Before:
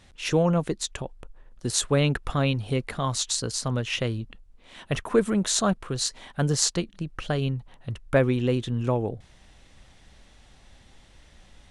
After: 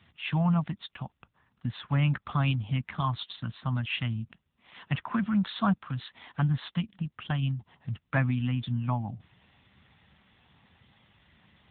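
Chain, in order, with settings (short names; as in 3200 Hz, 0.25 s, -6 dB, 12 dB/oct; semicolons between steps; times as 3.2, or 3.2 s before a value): Chebyshev band-stop 220–810 Hz, order 2; 0.99–2.13 treble ducked by the level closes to 2600 Hz, closed at -23.5 dBFS; AMR-NB 7.95 kbps 8000 Hz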